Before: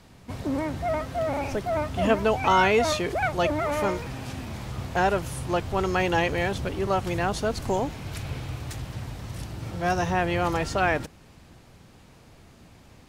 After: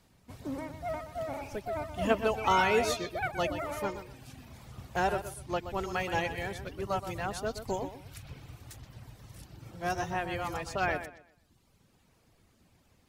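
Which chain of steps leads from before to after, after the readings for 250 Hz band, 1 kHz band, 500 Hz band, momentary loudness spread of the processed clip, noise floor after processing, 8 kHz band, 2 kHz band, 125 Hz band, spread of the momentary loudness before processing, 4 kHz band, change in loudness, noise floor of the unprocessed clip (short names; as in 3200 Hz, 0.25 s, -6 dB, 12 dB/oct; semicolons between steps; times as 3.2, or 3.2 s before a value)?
-9.0 dB, -6.5 dB, -7.5 dB, 21 LU, -67 dBFS, -5.5 dB, -6.5 dB, -10.5 dB, 13 LU, -6.5 dB, -6.5 dB, -52 dBFS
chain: reverb removal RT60 1.1 s; high shelf 8300 Hz +9.5 dB; analogue delay 0.124 s, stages 4096, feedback 31%, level -7.5 dB; upward expander 1.5:1, over -34 dBFS; gain -4 dB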